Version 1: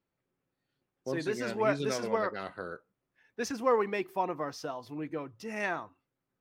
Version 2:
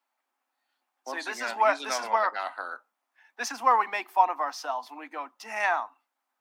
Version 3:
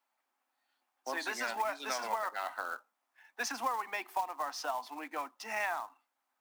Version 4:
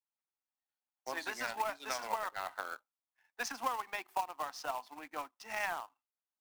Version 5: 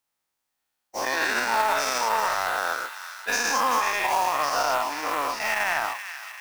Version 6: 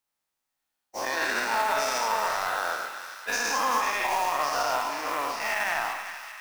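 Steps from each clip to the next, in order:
steep high-pass 230 Hz 72 dB/octave; resonant low shelf 590 Hz -10.5 dB, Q 3; trim +5.5 dB
compression 8:1, threshold -30 dBFS, peak gain reduction 15.5 dB; short-mantissa float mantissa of 2-bit; trim -1 dB
power-law waveshaper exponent 1.4; trim +1 dB
every event in the spectrogram widened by 240 ms; peak limiter -21 dBFS, peak gain reduction 7 dB; on a send: feedback echo behind a high-pass 387 ms, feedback 58%, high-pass 1.7 kHz, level -8 dB; on the sum: trim +8.5 dB
reverberation RT60 1.3 s, pre-delay 20 ms, DRR 6.5 dB; trim -3.5 dB

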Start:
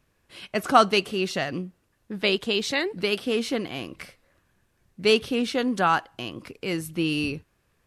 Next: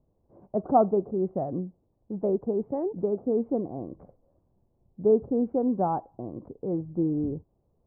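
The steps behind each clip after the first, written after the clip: steep low-pass 840 Hz 36 dB/octave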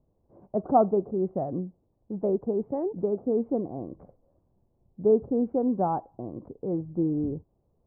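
no audible change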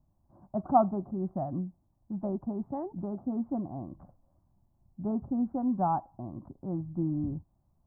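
static phaser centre 1.1 kHz, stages 4; trim +1.5 dB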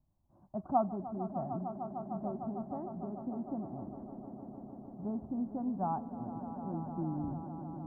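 echo with a slow build-up 151 ms, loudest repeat 5, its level -13 dB; trim -6.5 dB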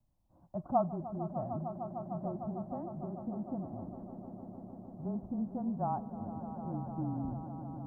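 frequency shift -23 Hz

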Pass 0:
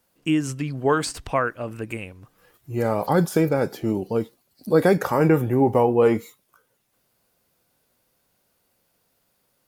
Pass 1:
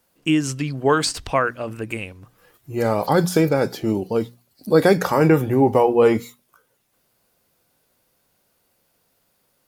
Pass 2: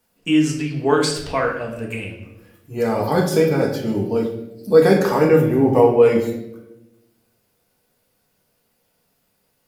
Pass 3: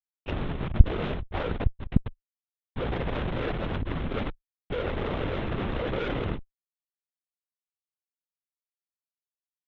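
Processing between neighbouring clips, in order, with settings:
hum notches 60/120/180/240 Hz; dynamic bell 4.5 kHz, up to +6 dB, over -47 dBFS, Q 0.94; trim +2.5 dB
reverberation RT60 0.95 s, pre-delay 4 ms, DRR -1.5 dB; trim -4 dB
Schmitt trigger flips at -20 dBFS; LPC vocoder at 8 kHz whisper; Chebyshev shaper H 4 -8 dB, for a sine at 6 dBFS; trim -9.5 dB

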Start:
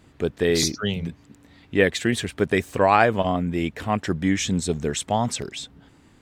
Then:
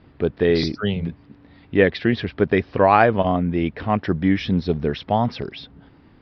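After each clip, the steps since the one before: steep low-pass 5.3 kHz 96 dB/octave; treble shelf 2.8 kHz -10 dB; trim +3.5 dB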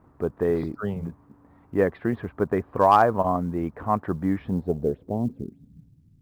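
low-pass sweep 1.1 kHz -> 140 Hz, 4.36–5.91 s; companded quantiser 8-bit; trim -6.5 dB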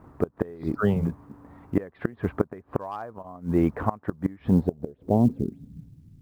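inverted gate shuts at -15 dBFS, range -25 dB; trim +6.5 dB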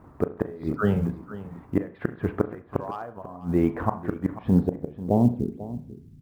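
delay 492 ms -15.5 dB; on a send at -11 dB: reverberation RT60 0.45 s, pre-delay 33 ms

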